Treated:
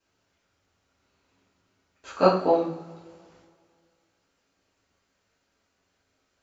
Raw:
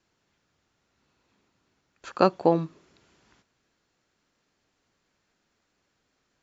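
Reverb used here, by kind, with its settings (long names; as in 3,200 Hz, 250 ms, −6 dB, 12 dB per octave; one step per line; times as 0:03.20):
coupled-rooms reverb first 0.5 s, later 2.2 s, from −21 dB, DRR −8.5 dB
level −8 dB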